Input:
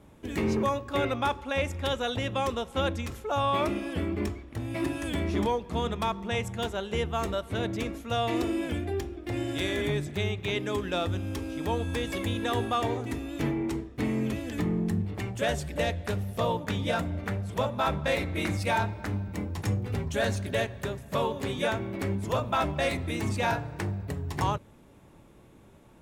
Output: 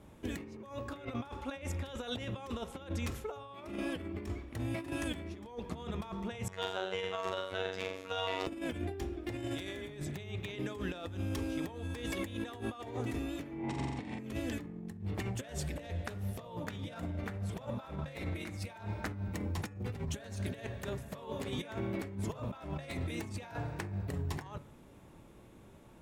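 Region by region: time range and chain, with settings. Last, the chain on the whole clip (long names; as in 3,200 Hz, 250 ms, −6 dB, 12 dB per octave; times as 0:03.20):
0:06.48–0:08.47: three-way crossover with the lows and the highs turned down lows −15 dB, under 390 Hz, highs −13 dB, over 5,900 Hz + flutter between parallel walls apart 7.5 metres, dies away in 0.6 s + phases set to zero 94.3 Hz
0:13.59–0:14.19: loudspeaker in its box 110–7,600 Hz, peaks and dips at 410 Hz −6 dB, 840 Hz +4 dB, 1,400 Hz −7 dB, 4,300 Hz −3 dB, 6,400 Hz −7 dB + flutter between parallel walls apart 7.6 metres, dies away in 1.4 s
whole clip: compressor whose output falls as the input rises −33 dBFS, ratio −0.5; hum removal 142.7 Hz, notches 18; level −5 dB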